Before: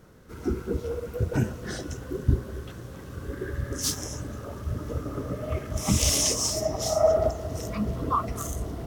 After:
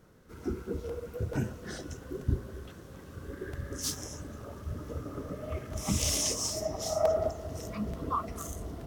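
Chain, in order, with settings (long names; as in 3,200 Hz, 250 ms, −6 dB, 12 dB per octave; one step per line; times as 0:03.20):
mains-hum notches 60/120 Hz
regular buffer underruns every 0.44 s, samples 128, repeat, from 0:00.45
level −6 dB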